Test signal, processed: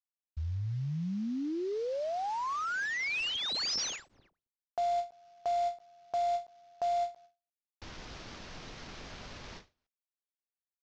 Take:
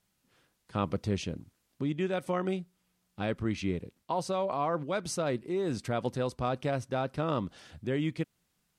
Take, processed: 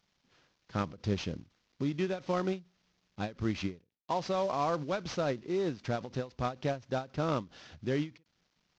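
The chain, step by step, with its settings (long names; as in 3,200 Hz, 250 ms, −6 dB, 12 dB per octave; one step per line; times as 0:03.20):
variable-slope delta modulation 32 kbit/s
every ending faded ahead of time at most 230 dB per second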